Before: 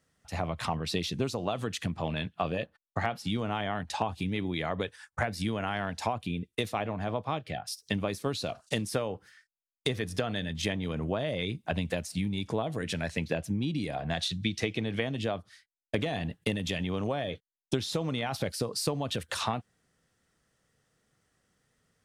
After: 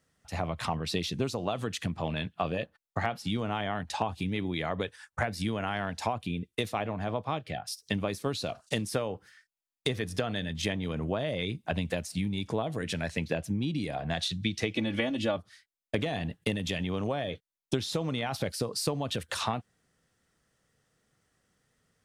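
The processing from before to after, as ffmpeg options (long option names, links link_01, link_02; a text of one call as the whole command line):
ffmpeg -i in.wav -filter_complex "[0:a]asettb=1/sr,asplit=3[link_01][link_02][link_03];[link_01]atrim=end=14.764[link_04];[link_02]atrim=start=14.76:end=15.37,asetpts=PTS-STARTPTS,afade=type=in:duration=0.004:curve=qsin,afade=type=out:start_time=0.606:duration=0.004:curve=qsin,aecho=1:1:3.5:0.94,atrim=end_sample=26901[link_05];[link_03]atrim=start=15.366[link_06];[link_04][link_05]acrossfade=duration=0.004:curve1=hsin:curve2=qsin[link_07];[link_07][link_06]acrossfade=duration=0.004:curve1=qsin:curve2=hsin" out.wav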